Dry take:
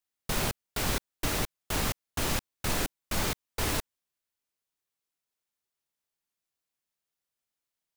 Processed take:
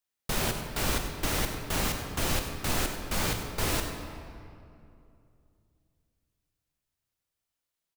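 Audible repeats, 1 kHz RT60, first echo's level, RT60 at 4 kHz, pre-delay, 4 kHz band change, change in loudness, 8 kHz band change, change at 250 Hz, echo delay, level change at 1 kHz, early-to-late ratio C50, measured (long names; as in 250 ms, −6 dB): 1, 2.4 s, −13.5 dB, 1.5 s, 24 ms, +1.0 dB, +1.0 dB, +1.0 dB, +1.5 dB, 96 ms, +1.5 dB, 5.0 dB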